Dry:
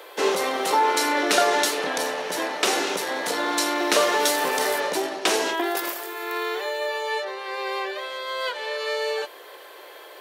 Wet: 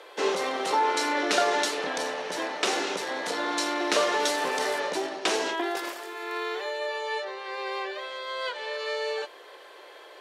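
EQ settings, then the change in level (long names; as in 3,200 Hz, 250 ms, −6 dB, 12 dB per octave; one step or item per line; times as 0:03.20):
low-pass filter 7,600 Hz 12 dB per octave
−4.0 dB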